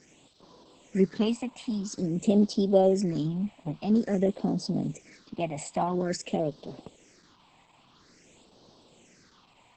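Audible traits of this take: a quantiser's noise floor 10-bit, dither triangular; phasing stages 6, 0.49 Hz, lowest notch 400–2100 Hz; Opus

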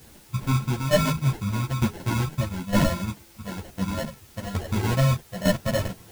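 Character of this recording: aliases and images of a low sample rate 1200 Hz, jitter 0%; tremolo saw down 1.1 Hz, depth 65%; a quantiser's noise floor 10-bit, dither triangular; a shimmering, thickened sound

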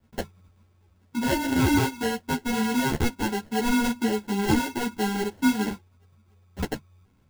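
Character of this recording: aliases and images of a low sample rate 1200 Hz, jitter 0%; a shimmering, thickened sound

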